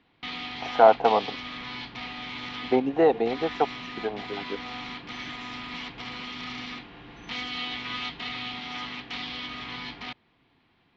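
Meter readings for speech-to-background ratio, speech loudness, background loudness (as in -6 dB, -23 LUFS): 12.5 dB, -23.0 LUFS, -35.5 LUFS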